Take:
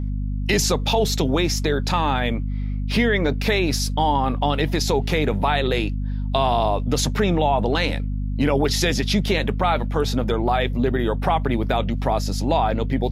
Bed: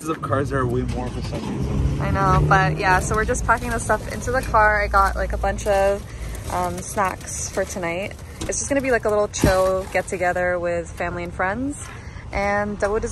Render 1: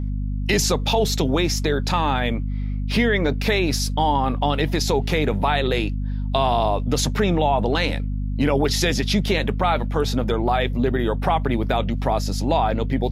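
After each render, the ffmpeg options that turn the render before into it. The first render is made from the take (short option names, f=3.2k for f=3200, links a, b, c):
-af anull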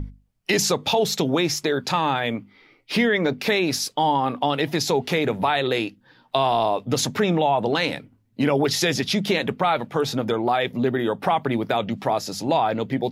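-af "bandreject=f=50:t=h:w=6,bandreject=f=100:t=h:w=6,bandreject=f=150:t=h:w=6,bandreject=f=200:t=h:w=6,bandreject=f=250:t=h:w=6"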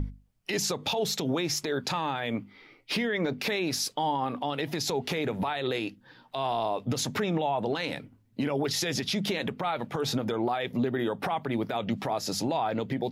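-af "acompressor=threshold=-23dB:ratio=2.5,alimiter=limit=-19.5dB:level=0:latency=1:release=99"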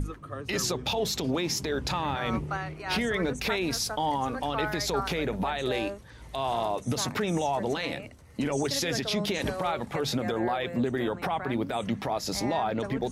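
-filter_complex "[1:a]volume=-17dB[a];[0:a][a]amix=inputs=2:normalize=0"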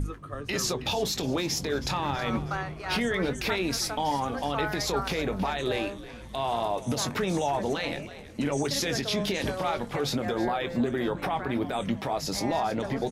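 -filter_complex "[0:a]asplit=2[a][b];[b]adelay=21,volume=-12dB[c];[a][c]amix=inputs=2:normalize=0,asplit=5[d][e][f][g][h];[e]adelay=321,afreqshift=-84,volume=-15.5dB[i];[f]adelay=642,afreqshift=-168,volume=-22.1dB[j];[g]adelay=963,afreqshift=-252,volume=-28.6dB[k];[h]adelay=1284,afreqshift=-336,volume=-35.2dB[l];[d][i][j][k][l]amix=inputs=5:normalize=0"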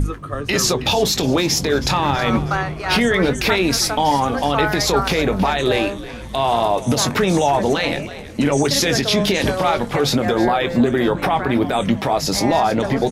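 -af "volume=11dB"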